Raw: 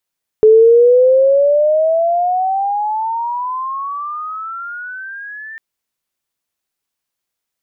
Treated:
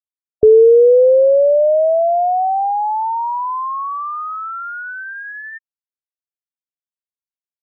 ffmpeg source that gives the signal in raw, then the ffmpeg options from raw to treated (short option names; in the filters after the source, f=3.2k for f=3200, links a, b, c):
-f lavfi -i "aevalsrc='pow(10,(-3.5-24.5*t/5.15)/20)*sin(2*PI*430*5.15/log(1800/430)*(exp(log(1800/430)*t/5.15)-1))':d=5.15:s=44100"
-af "afftfilt=real='re*gte(hypot(re,im),0.2)':imag='im*gte(hypot(re,im),0.2)':win_size=1024:overlap=0.75,equalizer=f=73:t=o:w=0.8:g=9"